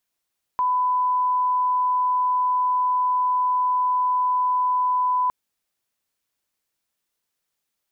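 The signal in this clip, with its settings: line-up tone -18 dBFS 4.71 s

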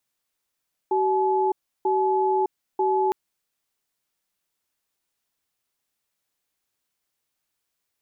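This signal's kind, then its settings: cadence 380 Hz, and 856 Hz, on 0.61 s, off 0.33 s, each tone -21.5 dBFS 2.21 s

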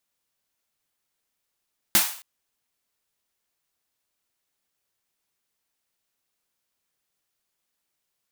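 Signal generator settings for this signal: snare drum length 0.27 s, tones 200 Hz, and 320 Hz, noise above 690 Hz, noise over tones 12 dB, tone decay 0.16 s, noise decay 0.48 s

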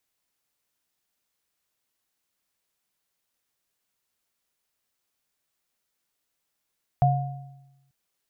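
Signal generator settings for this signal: sine partials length 0.89 s, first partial 136 Hz, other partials 717 Hz, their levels -1 dB, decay 1.07 s, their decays 0.78 s, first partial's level -16.5 dB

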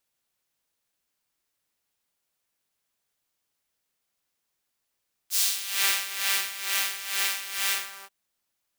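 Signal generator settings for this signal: synth patch with tremolo G4, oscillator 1 saw, sub -2.5 dB, noise -5.5 dB, filter highpass, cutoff 1 kHz, Q 1.1, filter envelope 2.5 oct, filter decay 0.56 s, filter sustain 45%, attack 47 ms, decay 1.19 s, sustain -4.5 dB, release 0.35 s, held 2.44 s, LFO 2.2 Hz, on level 12.5 dB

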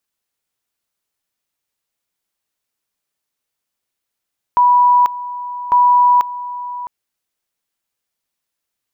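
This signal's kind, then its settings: two-level tone 980 Hz -7.5 dBFS, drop 15.5 dB, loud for 0.49 s, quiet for 0.66 s, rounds 2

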